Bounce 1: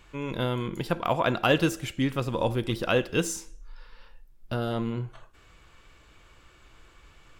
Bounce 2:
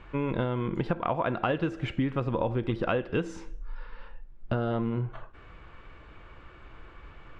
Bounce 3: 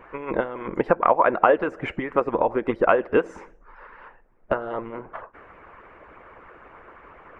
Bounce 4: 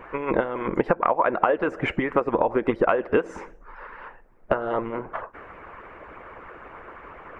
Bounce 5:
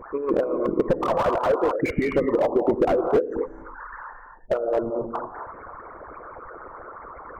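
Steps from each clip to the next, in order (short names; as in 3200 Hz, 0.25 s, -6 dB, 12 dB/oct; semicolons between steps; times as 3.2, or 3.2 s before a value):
LPF 2000 Hz 12 dB/oct; compressor 10:1, threshold -31 dBFS, peak gain reduction 14.5 dB; gain +7 dB
ten-band EQ 125 Hz -8 dB, 250 Hz +4 dB, 500 Hz +12 dB, 1000 Hz +9 dB, 2000 Hz +10 dB, 4000 Hz -11 dB; harmonic-percussive split harmonic -18 dB; gain +1.5 dB
compressor 4:1, threshold -22 dBFS, peak gain reduction 9.5 dB; gain +4.5 dB
formant sharpening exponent 3; non-linear reverb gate 0.28 s rising, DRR 6.5 dB; slew limiter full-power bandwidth 71 Hz; gain +2 dB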